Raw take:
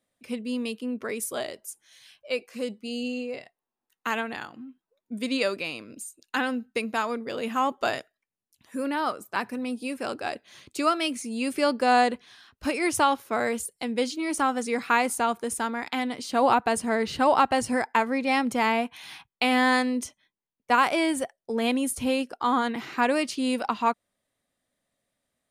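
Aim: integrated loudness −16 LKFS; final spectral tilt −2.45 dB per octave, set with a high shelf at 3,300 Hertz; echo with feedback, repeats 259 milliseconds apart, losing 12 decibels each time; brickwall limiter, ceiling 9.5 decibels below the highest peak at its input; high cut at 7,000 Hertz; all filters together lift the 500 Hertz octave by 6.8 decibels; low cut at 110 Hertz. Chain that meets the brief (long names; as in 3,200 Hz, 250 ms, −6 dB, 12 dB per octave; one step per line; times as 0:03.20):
high-pass filter 110 Hz
low-pass filter 7,000 Hz
parametric band 500 Hz +8 dB
high-shelf EQ 3,300 Hz −5.5 dB
brickwall limiter −15.5 dBFS
repeating echo 259 ms, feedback 25%, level −12 dB
level +11 dB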